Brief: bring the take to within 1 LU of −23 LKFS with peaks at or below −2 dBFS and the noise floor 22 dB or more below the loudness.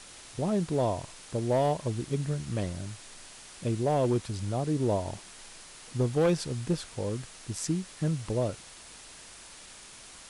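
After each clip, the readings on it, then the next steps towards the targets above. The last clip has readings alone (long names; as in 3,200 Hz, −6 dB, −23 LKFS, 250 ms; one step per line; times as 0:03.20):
share of clipped samples 0.8%; peaks flattened at −19.5 dBFS; background noise floor −49 dBFS; target noise floor −53 dBFS; integrated loudness −30.5 LKFS; sample peak −19.5 dBFS; target loudness −23.0 LKFS
→ clipped peaks rebuilt −19.5 dBFS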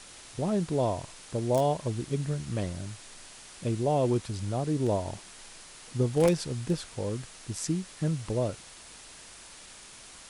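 share of clipped samples 0.0%; background noise floor −49 dBFS; target noise floor −53 dBFS
→ noise reduction from a noise print 6 dB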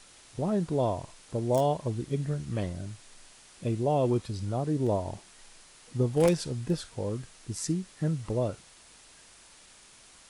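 background noise floor −55 dBFS; integrated loudness −30.5 LKFS; sample peak −10.5 dBFS; target loudness −23.0 LKFS
→ level +7.5 dB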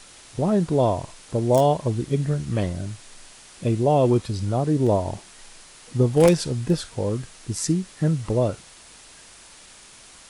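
integrated loudness −23.0 LKFS; sample peak −3.0 dBFS; background noise floor −48 dBFS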